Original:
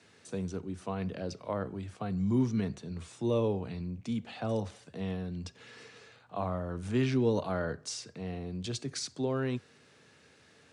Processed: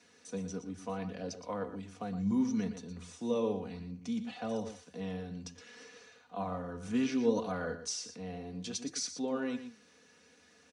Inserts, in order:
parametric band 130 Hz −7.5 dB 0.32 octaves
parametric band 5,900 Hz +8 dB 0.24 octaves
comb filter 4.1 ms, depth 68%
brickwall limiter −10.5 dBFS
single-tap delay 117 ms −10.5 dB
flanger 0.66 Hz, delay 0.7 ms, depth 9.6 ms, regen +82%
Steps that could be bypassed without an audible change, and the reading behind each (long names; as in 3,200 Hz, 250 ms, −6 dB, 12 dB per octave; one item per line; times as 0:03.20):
brickwall limiter −10.5 dBFS: peak of its input −14.5 dBFS